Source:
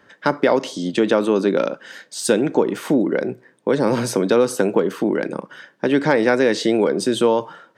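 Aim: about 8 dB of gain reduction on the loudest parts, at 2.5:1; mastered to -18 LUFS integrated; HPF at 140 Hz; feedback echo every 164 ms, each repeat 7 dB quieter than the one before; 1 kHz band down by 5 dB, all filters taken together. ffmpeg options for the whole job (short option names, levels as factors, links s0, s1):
-af "highpass=140,equalizer=f=1000:t=o:g=-6.5,acompressor=threshold=0.0562:ratio=2.5,aecho=1:1:164|328|492|656|820:0.447|0.201|0.0905|0.0407|0.0183,volume=2.66"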